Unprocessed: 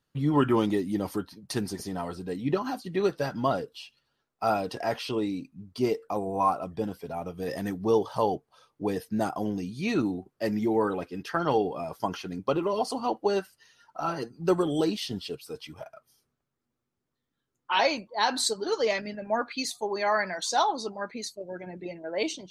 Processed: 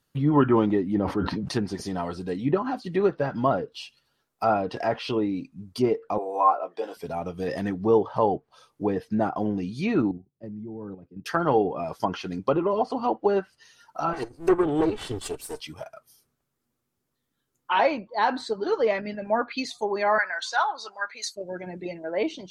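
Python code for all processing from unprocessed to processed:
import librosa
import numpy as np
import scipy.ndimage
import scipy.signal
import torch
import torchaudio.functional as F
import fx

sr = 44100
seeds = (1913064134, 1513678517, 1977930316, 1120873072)

y = fx.chain(x, sr, fx.high_shelf(hz=3600.0, db=-7.5),
    fx.sustainer(db_per_s=29.0), at=(0.95, 1.53))
y = fx.chain(y, sr, fx.highpass(hz=400.0, slope=24),
    fx.doubler(ms=17.0, db=-8), at=(6.18, 6.97))
y = fx.chain(y, sr, fx.bandpass_q(hz=130.0, q=1.3),
    fx.level_steps(step_db=10), at=(10.11, 11.26))
y = fx.chain(y, sr, fx.lower_of_two(delay_ms=2.6),
    fx.high_shelf_res(hz=6700.0, db=8.5, q=1.5), at=(14.13, 15.6))
y = fx.chain(y, sr, fx.highpass(hz=1000.0, slope=12),
    fx.peak_eq(hz=1500.0, db=9.0, octaves=0.38), at=(20.18, 21.36))
y = fx.env_lowpass_down(y, sr, base_hz=1800.0, full_db=-25.0)
y = fx.high_shelf(y, sr, hz=9100.0, db=11.0)
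y = y * librosa.db_to_amplitude(3.5)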